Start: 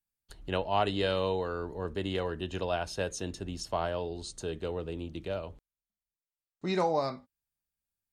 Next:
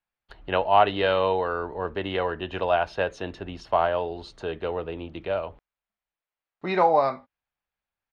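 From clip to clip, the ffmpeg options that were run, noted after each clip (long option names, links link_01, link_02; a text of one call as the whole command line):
ffmpeg -i in.wav -af "firequalizer=gain_entry='entry(180,0);entry(710,11);entry(2400,8);entry(7700,-19)':delay=0.05:min_phase=1" out.wav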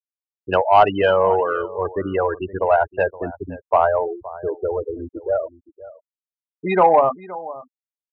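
ffmpeg -i in.wav -filter_complex "[0:a]afftfilt=real='re*gte(hypot(re,im),0.0891)':imag='im*gte(hypot(re,im),0.0891)':win_size=1024:overlap=0.75,asplit=2[link_01][link_02];[link_02]adelay=519,volume=-18dB,highshelf=frequency=4000:gain=-11.7[link_03];[link_01][link_03]amix=inputs=2:normalize=0,acontrast=80" out.wav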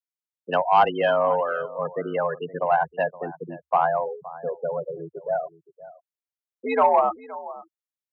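ffmpeg -i in.wav -af "afreqshift=73,volume=-4.5dB" out.wav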